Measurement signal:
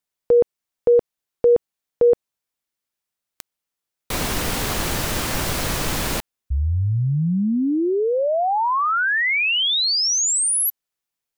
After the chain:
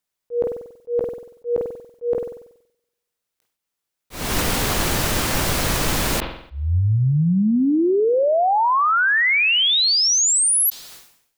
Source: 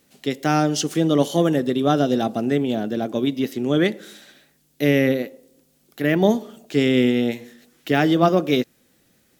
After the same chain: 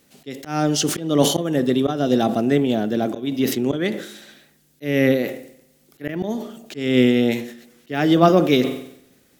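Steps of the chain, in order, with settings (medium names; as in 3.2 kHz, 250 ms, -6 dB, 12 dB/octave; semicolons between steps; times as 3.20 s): slow attack 254 ms; spring tank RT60 1.2 s, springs 47 ms, chirp 20 ms, DRR 20 dB; decay stretcher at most 88 dB/s; trim +2.5 dB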